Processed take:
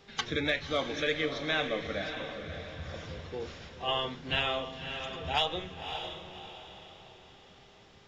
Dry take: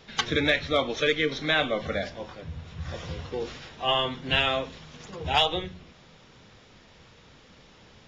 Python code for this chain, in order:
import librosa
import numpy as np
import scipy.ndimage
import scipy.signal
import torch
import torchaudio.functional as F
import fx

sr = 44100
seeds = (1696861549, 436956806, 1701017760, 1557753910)

y = fx.dmg_buzz(x, sr, base_hz=400.0, harmonics=20, level_db=-57.0, tilt_db=-7, odd_only=False)
y = fx.echo_diffused(y, sr, ms=578, feedback_pct=41, wet_db=-7.5)
y = F.gain(torch.from_numpy(y), -6.5).numpy()